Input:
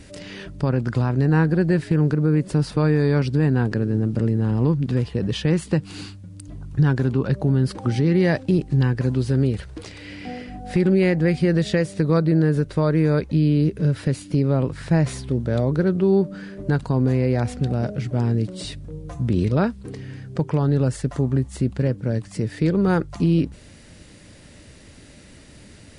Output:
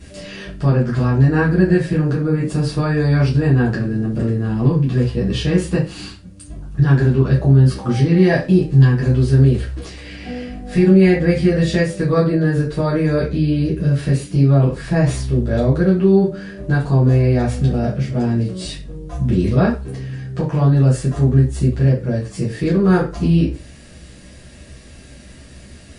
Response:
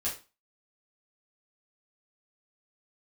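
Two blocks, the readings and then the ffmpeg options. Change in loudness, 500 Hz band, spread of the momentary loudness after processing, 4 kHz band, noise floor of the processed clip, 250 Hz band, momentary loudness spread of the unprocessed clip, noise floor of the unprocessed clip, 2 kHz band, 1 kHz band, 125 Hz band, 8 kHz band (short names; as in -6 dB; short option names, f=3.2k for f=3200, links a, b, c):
+5.0 dB, +4.0 dB, 14 LU, +4.0 dB, -41 dBFS, +4.0 dB, 14 LU, -46 dBFS, +5.0 dB, +4.0 dB, +5.5 dB, n/a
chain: -filter_complex "[1:a]atrim=start_sample=2205[a];[0:a][a]afir=irnorm=-1:irlink=0"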